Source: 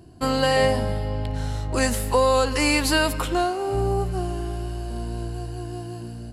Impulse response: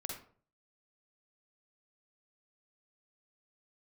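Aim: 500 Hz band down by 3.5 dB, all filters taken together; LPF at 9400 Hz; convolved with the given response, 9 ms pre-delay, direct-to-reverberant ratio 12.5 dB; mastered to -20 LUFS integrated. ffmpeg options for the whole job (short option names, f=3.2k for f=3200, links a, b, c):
-filter_complex "[0:a]lowpass=9.4k,equalizer=f=500:t=o:g=-4,asplit=2[a][b];[1:a]atrim=start_sample=2205,adelay=9[c];[b][c]afir=irnorm=-1:irlink=0,volume=-11.5dB[d];[a][d]amix=inputs=2:normalize=0,volume=5dB"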